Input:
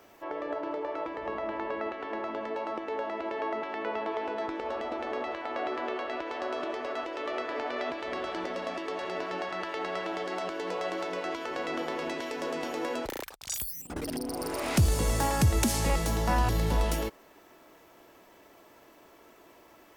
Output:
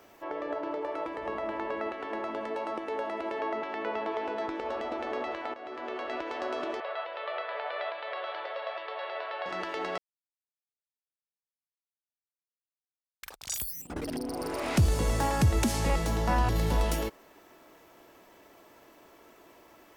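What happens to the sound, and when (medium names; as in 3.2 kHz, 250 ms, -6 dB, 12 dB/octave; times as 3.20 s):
0.82–3.39 s: peaking EQ 10 kHz +12 dB 0.58 oct
5.54–6.14 s: fade in, from -15 dB
6.80–9.46 s: elliptic band-pass 530–3900 Hz
9.98–13.23 s: mute
13.84–16.56 s: treble shelf 6 kHz -7 dB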